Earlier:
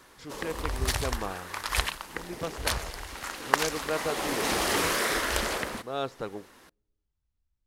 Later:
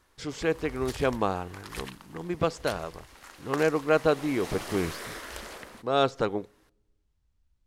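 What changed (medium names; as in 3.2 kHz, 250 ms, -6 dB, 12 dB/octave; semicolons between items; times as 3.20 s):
speech +8.5 dB; background -12.0 dB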